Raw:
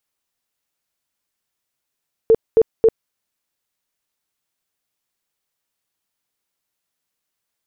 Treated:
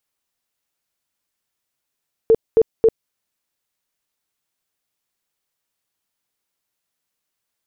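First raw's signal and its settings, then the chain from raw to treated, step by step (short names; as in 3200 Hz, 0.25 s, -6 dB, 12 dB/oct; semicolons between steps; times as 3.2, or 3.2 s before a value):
tone bursts 449 Hz, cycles 21, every 0.27 s, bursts 3, -7.5 dBFS
dynamic EQ 1300 Hz, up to -5 dB, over -33 dBFS, Q 0.98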